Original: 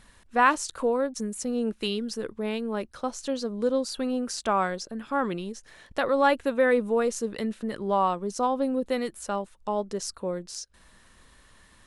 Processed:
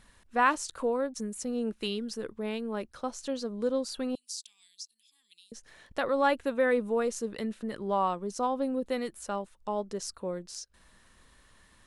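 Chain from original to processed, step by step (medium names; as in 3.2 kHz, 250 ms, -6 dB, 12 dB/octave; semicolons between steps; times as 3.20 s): 4.15–5.52 s: inverse Chebyshev high-pass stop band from 1.5 kHz, stop band 50 dB; trim -4 dB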